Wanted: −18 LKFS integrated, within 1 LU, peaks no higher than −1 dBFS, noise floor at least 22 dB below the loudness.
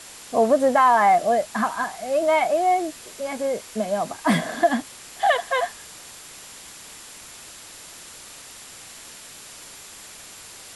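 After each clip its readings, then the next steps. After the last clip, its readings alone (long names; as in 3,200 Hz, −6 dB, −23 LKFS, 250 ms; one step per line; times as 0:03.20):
interfering tone 7,300 Hz; level of the tone −50 dBFS; background noise floor −43 dBFS; target noise floor −44 dBFS; integrated loudness −21.5 LKFS; sample peak −7.5 dBFS; target loudness −18.0 LKFS
→ notch filter 7,300 Hz, Q 30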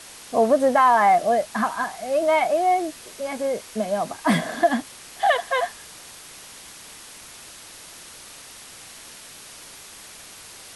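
interfering tone none found; background noise floor −43 dBFS; target noise floor −44 dBFS
→ broadband denoise 6 dB, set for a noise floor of −43 dBFS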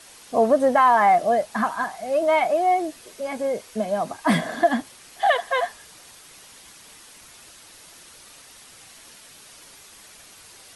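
background noise floor −48 dBFS; integrated loudness −21.5 LKFS; sample peak −7.5 dBFS; target loudness −18.0 LKFS
→ level +3.5 dB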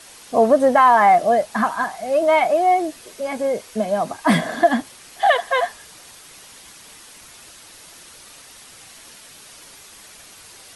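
integrated loudness −18.0 LKFS; sample peak −4.0 dBFS; background noise floor −44 dBFS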